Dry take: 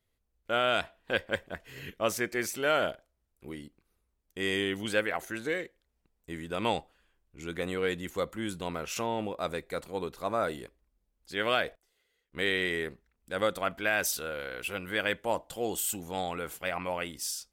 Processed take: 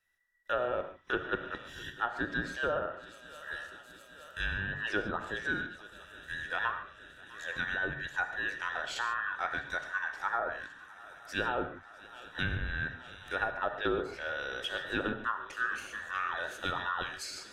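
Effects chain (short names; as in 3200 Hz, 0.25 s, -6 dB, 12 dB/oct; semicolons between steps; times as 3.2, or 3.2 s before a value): band inversion scrambler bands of 2000 Hz; swung echo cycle 0.869 s, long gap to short 3:1, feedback 72%, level -23 dB; treble ducked by the level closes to 810 Hz, closed at -24 dBFS; non-linear reverb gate 0.17 s flat, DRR 7.5 dB; gain -1 dB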